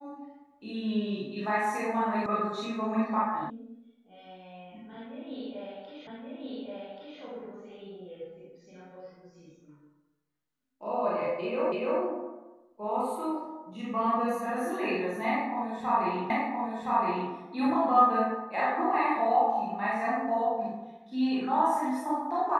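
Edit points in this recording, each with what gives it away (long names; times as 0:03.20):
0:02.26: cut off before it has died away
0:03.50: cut off before it has died away
0:06.07: the same again, the last 1.13 s
0:11.72: the same again, the last 0.29 s
0:16.30: the same again, the last 1.02 s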